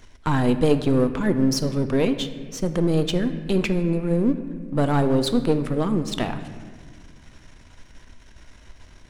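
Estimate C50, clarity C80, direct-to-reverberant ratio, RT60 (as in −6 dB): 11.0 dB, 12.0 dB, 9.0 dB, 1.6 s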